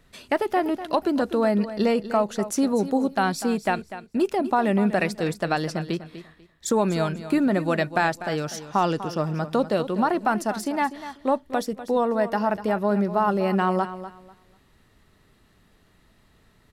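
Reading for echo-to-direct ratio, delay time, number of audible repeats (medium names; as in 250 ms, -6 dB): -13.0 dB, 246 ms, 2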